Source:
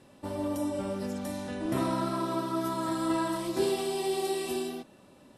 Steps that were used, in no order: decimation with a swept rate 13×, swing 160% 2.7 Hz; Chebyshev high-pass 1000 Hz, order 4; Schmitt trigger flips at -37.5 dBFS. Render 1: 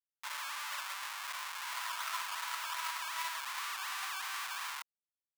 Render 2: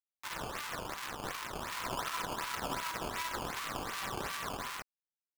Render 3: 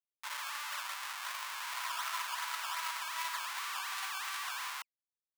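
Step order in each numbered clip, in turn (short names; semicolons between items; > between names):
decimation with a swept rate > Schmitt trigger > Chebyshev high-pass; Schmitt trigger > Chebyshev high-pass > decimation with a swept rate; Schmitt trigger > decimation with a swept rate > Chebyshev high-pass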